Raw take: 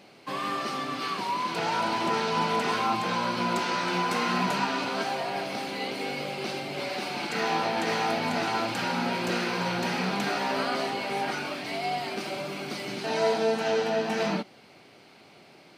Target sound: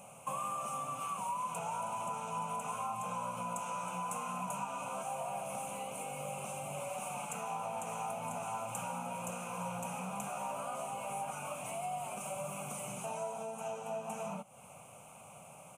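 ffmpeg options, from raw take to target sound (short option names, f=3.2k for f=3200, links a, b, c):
-af "acompressor=threshold=-38dB:ratio=6,firequalizer=gain_entry='entry(160,0);entry(350,-23);entry(520,-1);entry(1200,1);entry(1800,-25);entry(2500,-3);entry(4500,-29);entry(6600,7);entry(9600,14);entry(14000,4)':delay=0.05:min_phase=1,volume=3dB"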